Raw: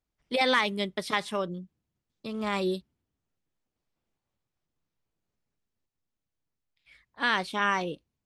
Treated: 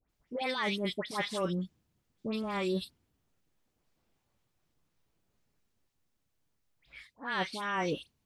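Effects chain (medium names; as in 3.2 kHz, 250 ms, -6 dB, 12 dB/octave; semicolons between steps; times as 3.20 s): reverse; compression 16:1, threshold -36 dBFS, peak gain reduction 18 dB; reverse; phase dispersion highs, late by 96 ms, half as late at 1.8 kHz; trim +7 dB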